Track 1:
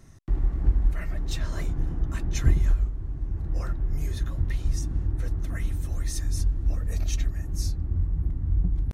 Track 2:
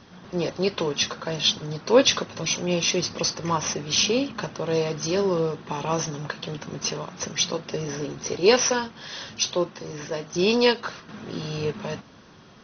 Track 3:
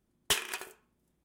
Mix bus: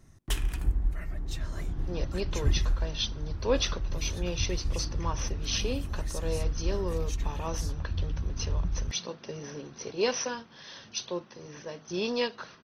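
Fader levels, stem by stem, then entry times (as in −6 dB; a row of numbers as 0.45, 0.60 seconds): −5.5, −10.0, −7.5 decibels; 0.00, 1.55, 0.00 seconds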